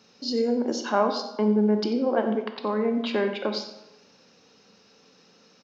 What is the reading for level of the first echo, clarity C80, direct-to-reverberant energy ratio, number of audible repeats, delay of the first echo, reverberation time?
-13.5 dB, 9.0 dB, 5.5 dB, 1, 90 ms, 0.95 s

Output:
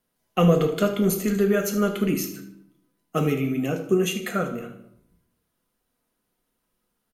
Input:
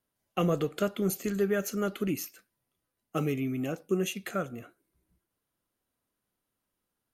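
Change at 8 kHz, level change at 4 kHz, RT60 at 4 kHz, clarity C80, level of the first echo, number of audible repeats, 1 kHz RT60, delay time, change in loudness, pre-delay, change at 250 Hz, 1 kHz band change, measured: +6.5 dB, +7.5 dB, 0.50 s, 12.0 dB, -13.0 dB, 1, 0.75 s, 77 ms, +7.5 dB, 4 ms, +8.0 dB, +7.5 dB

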